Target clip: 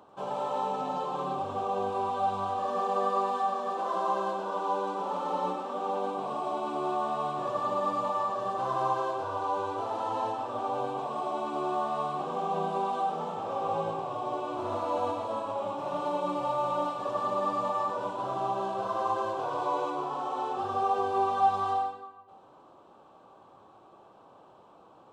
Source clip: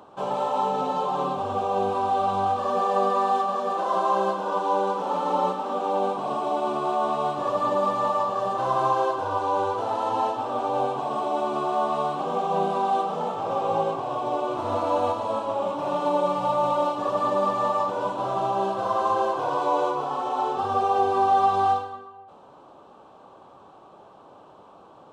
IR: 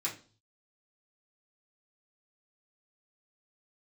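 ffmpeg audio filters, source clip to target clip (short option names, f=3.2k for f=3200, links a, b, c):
-filter_complex "[0:a]asplit=2[a][b];[1:a]atrim=start_sample=2205,adelay=93[c];[b][c]afir=irnorm=-1:irlink=0,volume=-8.5dB[d];[a][d]amix=inputs=2:normalize=0,volume=-7dB"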